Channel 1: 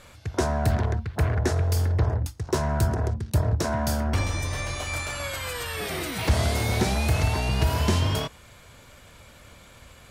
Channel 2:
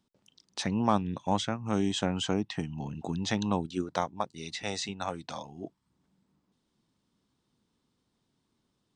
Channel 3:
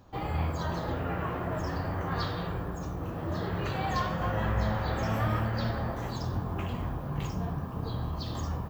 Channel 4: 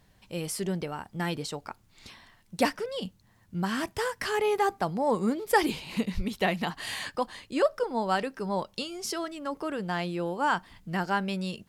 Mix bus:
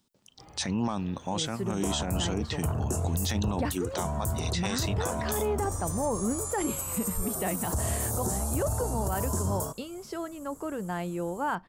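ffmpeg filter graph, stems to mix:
-filter_complex "[0:a]firequalizer=gain_entry='entry(1200,0);entry(2200,-30);entry(7300,13)':delay=0.05:min_phase=1,adelay=1450,volume=0.501[s0];[1:a]highshelf=f=5100:g=11,volume=1.19[s1];[2:a]adelay=250,volume=0.119[s2];[3:a]lowpass=f=1100:p=1,adelay=1000,volume=0.944[s3];[s0][s1][s2][s3]amix=inputs=4:normalize=0,alimiter=limit=0.1:level=0:latency=1:release=18"

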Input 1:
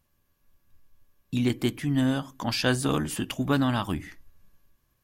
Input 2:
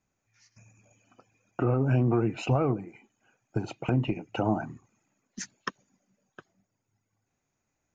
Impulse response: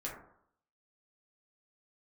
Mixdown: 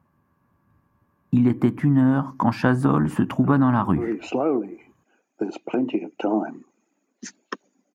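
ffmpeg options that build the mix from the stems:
-filter_complex "[0:a]firequalizer=gain_entry='entry(500,0);entry(960,12);entry(3300,-11)':delay=0.05:min_phase=1,volume=1,asplit=2[s0][s1];[1:a]highpass=f=290:w=0.5412,highpass=f=290:w=1.3066,adelay=1850,volume=0.944[s2];[s1]apad=whole_len=431837[s3];[s2][s3]sidechaincompress=threshold=0.0224:ratio=8:attack=16:release=302[s4];[s0][s4]amix=inputs=2:normalize=0,highpass=77,equalizer=f=190:t=o:w=2.6:g=14,acompressor=threshold=0.178:ratio=4"

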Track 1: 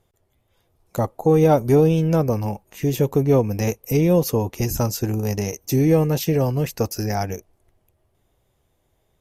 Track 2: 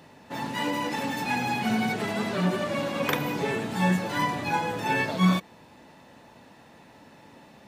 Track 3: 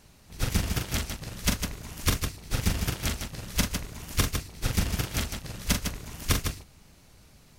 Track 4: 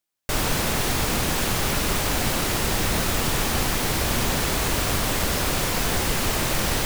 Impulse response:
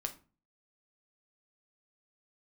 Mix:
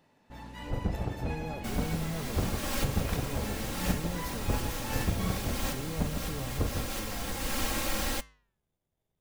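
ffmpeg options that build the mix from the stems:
-filter_complex "[0:a]aeval=exprs='if(lt(val(0),0),0.447*val(0),val(0))':c=same,equalizer=f=180:t=o:w=0.77:g=8.5,alimiter=limit=0.158:level=0:latency=1,volume=0.266,asplit=2[s0][s1];[1:a]volume=0.299[s2];[2:a]lowpass=f=670:t=q:w=1.6,aeval=exprs='val(0)+0.00708*(sin(2*PI*60*n/s)+sin(2*PI*2*60*n/s)/2+sin(2*PI*3*60*n/s)/3+sin(2*PI*4*60*n/s)/4+sin(2*PI*5*60*n/s)/5)':c=same,adelay=300,volume=1.06[s3];[3:a]aecho=1:1:3.7:0.9,dynaudnorm=f=190:g=3:m=2.37,adelay=1350,volume=0.282[s4];[s1]apad=whole_len=362001[s5];[s4][s5]sidechaincompress=threshold=0.01:ratio=8:attack=30:release=459[s6];[s0][s2][s3][s6]amix=inputs=4:normalize=0,flanger=delay=9:depth=9.3:regen=-88:speed=0.37:shape=sinusoidal"

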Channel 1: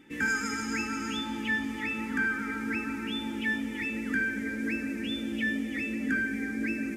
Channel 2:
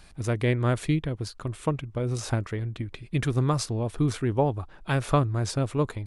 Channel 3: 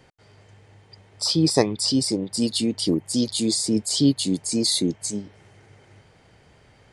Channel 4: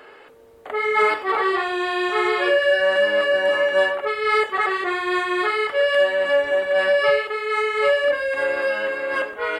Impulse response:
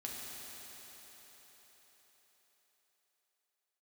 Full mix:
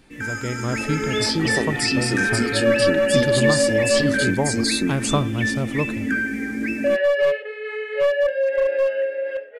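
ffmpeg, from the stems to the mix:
-filter_complex "[0:a]volume=0.841[s0];[1:a]volume=0.473,asplit=2[s1][s2];[s2]volume=0.119[s3];[2:a]acompressor=threshold=0.0891:ratio=6,volume=0.501[s4];[3:a]asplit=3[s5][s6][s7];[s5]bandpass=f=530:t=q:w=8,volume=1[s8];[s6]bandpass=f=1840:t=q:w=8,volume=0.501[s9];[s7]bandpass=f=2480:t=q:w=8,volume=0.355[s10];[s8][s9][s10]amix=inputs=3:normalize=0,aeval=exprs='clip(val(0),-1,0.0891)':c=same,adelay=150,volume=0.794,asplit=3[s11][s12][s13];[s11]atrim=end=4.31,asetpts=PTS-STARTPTS,afade=t=out:st=4.306:d=0.004:c=hsin[s14];[s12]atrim=start=4.31:end=6.84,asetpts=PTS-STARTPTS,volume=0[s15];[s13]atrim=start=6.84,asetpts=PTS-STARTPTS,afade=t=in:d=0.004:c=hsin[s16];[s14][s15][s16]concat=n=3:v=0:a=1[s17];[s3]aecho=0:1:86:1[s18];[s0][s1][s4][s17][s18]amix=inputs=5:normalize=0,dynaudnorm=f=150:g=9:m=2.37"

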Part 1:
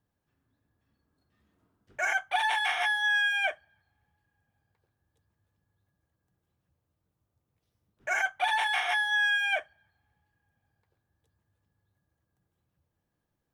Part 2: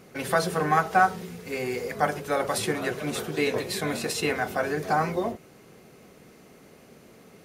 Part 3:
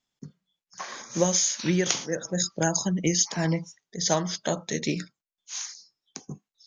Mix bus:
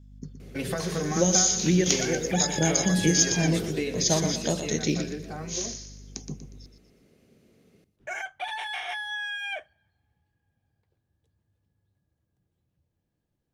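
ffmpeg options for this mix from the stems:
-filter_complex "[0:a]volume=0.668[s0];[1:a]equalizer=f=850:w=1.6:g=-5.5,adelay=400,volume=0.794,afade=t=out:st=3.81:d=0.79:silence=0.281838,asplit=2[s1][s2];[s2]volume=0.0891[s3];[2:a]aeval=exprs='val(0)+0.00282*(sin(2*PI*50*n/s)+sin(2*PI*2*50*n/s)/2+sin(2*PI*3*50*n/s)/3+sin(2*PI*4*50*n/s)/4+sin(2*PI*5*50*n/s)/5)':c=same,volume=0.631,asplit=2[s4][s5];[s5]volume=0.355[s6];[s0][s1]amix=inputs=2:normalize=0,highshelf=f=6500:g=-10.5,acompressor=threshold=0.0316:ratio=6,volume=1[s7];[s3][s6]amix=inputs=2:normalize=0,aecho=0:1:120|240|360|480|600|720:1|0.4|0.16|0.064|0.0256|0.0102[s8];[s4][s7][s8]amix=inputs=3:normalize=0,equalizer=f=1200:t=o:w=1.8:g=-9.5,acontrast=73"

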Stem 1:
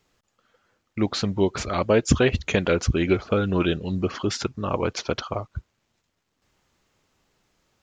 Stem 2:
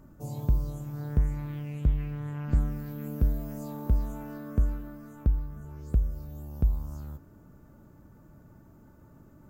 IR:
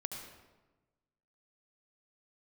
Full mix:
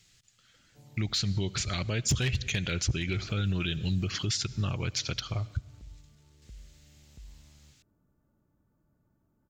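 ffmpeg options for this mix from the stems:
-filter_complex "[0:a]equalizer=f=125:t=o:w=1:g=8,equalizer=f=250:t=o:w=1:g=-7,equalizer=f=500:t=o:w=1:g=-10,equalizer=f=1000:t=o:w=1:g=-12,equalizer=f=2000:t=o:w=1:g=3,equalizer=f=4000:t=o:w=1:g=6,equalizer=f=8000:t=o:w=1:g=9,volume=1.26,asplit=2[s0][s1];[s1]volume=0.133[s2];[1:a]alimiter=limit=0.0668:level=0:latency=1,adelay=550,volume=0.119[s3];[2:a]atrim=start_sample=2205[s4];[s2][s4]afir=irnorm=-1:irlink=0[s5];[s0][s3][s5]amix=inputs=3:normalize=0,asoftclip=type=hard:threshold=0.335,alimiter=limit=0.0944:level=0:latency=1:release=181"

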